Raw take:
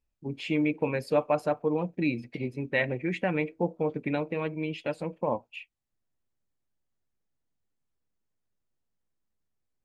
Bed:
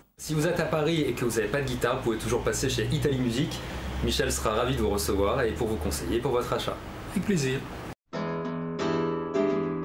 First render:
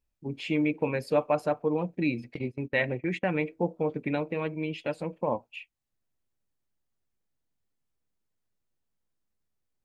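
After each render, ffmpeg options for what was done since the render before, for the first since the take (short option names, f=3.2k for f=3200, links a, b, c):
-filter_complex "[0:a]asettb=1/sr,asplit=3[a][b][c];[a]atrim=end=2.344[d];[b]atrim=start=2.34:end=3.34,asetpts=PTS-STARTPTS,afade=t=in:d=0.004:c=qsin,afade=t=out:st=0.996:d=0.004:c=qsin,agate=range=-17dB:threshold=-39dB:ratio=16:release=100:detection=peak[e];[c]atrim=start=3.336[f];[d][e]acrossfade=d=0.004:c1=hsin:c2=qsin[g];[g][f]acrossfade=d=0.004:c1=qsin:c2=hsin"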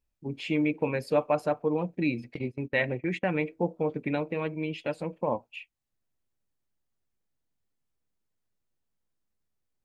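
-af anull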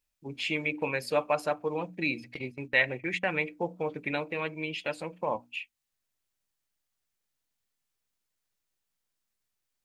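-af "tiltshelf=f=870:g=-6.5,bandreject=f=60:t=h:w=6,bandreject=f=120:t=h:w=6,bandreject=f=180:t=h:w=6,bandreject=f=240:t=h:w=6,bandreject=f=300:t=h:w=6"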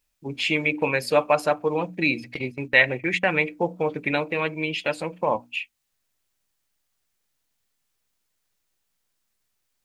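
-af "volume=7.5dB"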